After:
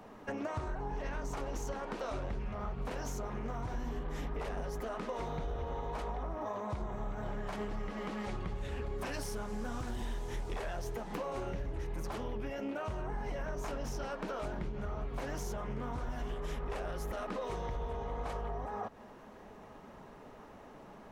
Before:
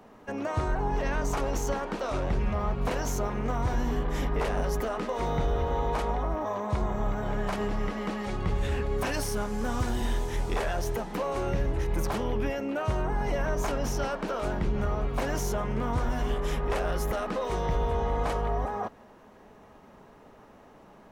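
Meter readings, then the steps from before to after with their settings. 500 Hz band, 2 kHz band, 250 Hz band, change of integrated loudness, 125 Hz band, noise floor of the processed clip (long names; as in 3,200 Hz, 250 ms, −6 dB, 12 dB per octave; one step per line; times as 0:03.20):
−9.5 dB, −9.0 dB, −9.0 dB, −9.5 dB, −10.0 dB, −53 dBFS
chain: downward compressor, threshold −36 dBFS, peak gain reduction 12.5 dB
flanger 1.8 Hz, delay 0.8 ms, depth 7.5 ms, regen −56%
highs frequency-modulated by the lows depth 0.21 ms
level +4.5 dB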